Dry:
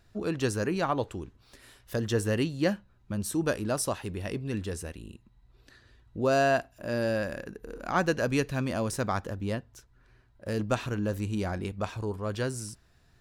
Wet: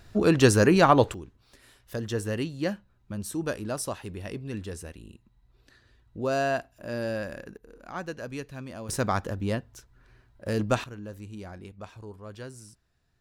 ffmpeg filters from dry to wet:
-af "asetnsamples=n=441:p=0,asendcmd='1.14 volume volume -2.5dB;7.57 volume volume -9.5dB;8.89 volume volume 3dB;10.84 volume volume -10dB',volume=3.16"

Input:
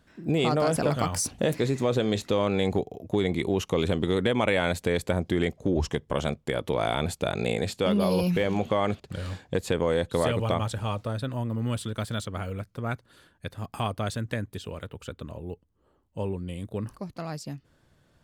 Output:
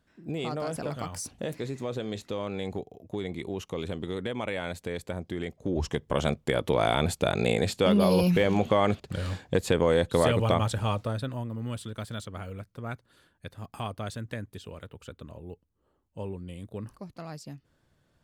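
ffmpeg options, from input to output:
-af "volume=1.26,afade=t=in:st=5.48:d=0.85:silence=0.298538,afade=t=out:st=10.89:d=0.61:silence=0.421697"

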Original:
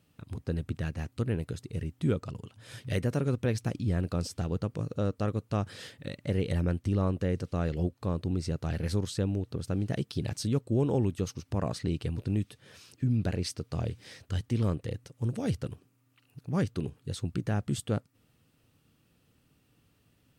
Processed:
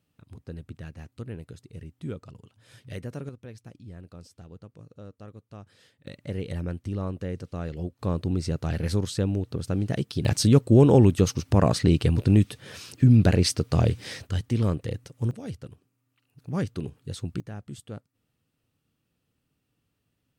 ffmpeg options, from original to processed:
-af "asetnsamples=n=441:p=0,asendcmd='3.29 volume volume -14.5dB;6.07 volume volume -3dB;7.99 volume volume 4dB;10.25 volume volume 11dB;14.27 volume volume 4dB;15.31 volume volume -6dB;16.39 volume volume 0.5dB;17.4 volume volume -9dB',volume=0.447"

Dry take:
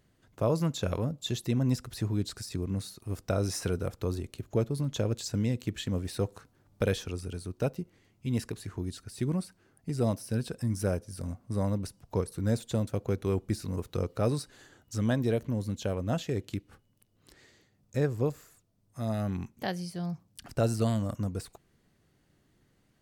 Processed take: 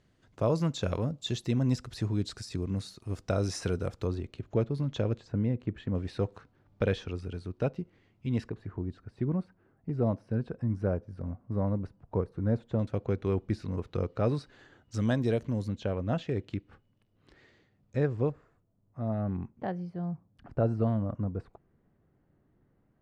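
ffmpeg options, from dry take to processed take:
-af "asetnsamples=n=441:p=0,asendcmd='4.07 lowpass f 3500;5.18 lowpass f 1500;5.95 lowpass f 3300;8.49 lowpass f 1400;12.79 lowpass f 3200;14.94 lowpass f 6500;15.68 lowpass f 3000;18.3 lowpass f 1200',lowpass=6600"

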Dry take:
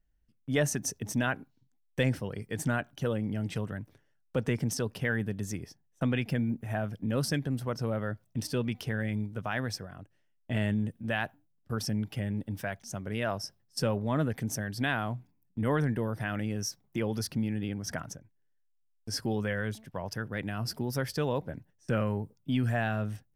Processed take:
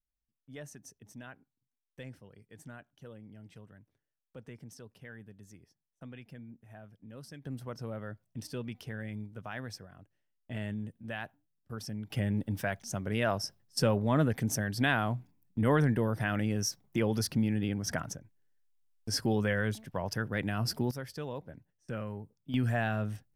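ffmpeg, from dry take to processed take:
-af "asetnsamples=n=441:p=0,asendcmd='7.45 volume volume -8dB;12.1 volume volume 2dB;20.91 volume volume -9dB;22.54 volume volume -1dB',volume=0.119"

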